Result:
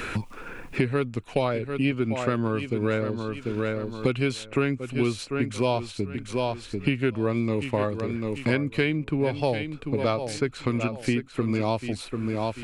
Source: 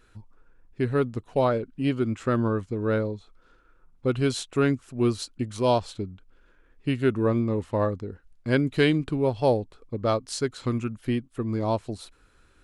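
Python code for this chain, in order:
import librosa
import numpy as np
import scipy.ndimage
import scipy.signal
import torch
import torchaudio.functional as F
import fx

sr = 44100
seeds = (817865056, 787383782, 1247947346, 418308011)

p1 = fx.peak_eq(x, sr, hz=2400.0, db=10.5, octaves=0.5)
p2 = p1 + fx.echo_feedback(p1, sr, ms=742, feedback_pct=20, wet_db=-11.5, dry=0)
p3 = fx.band_squash(p2, sr, depth_pct=100)
y = F.gain(torch.from_numpy(p3), -1.5).numpy()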